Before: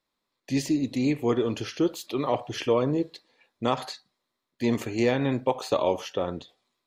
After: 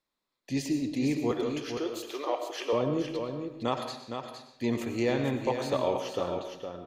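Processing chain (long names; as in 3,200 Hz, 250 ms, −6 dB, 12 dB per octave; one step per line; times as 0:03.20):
0:01.31–0:02.73: high-pass filter 390 Hz 24 dB per octave
single-tap delay 462 ms −7 dB
on a send at −7.5 dB: convolution reverb RT60 0.75 s, pre-delay 65 ms
on the sum: level −4.5 dB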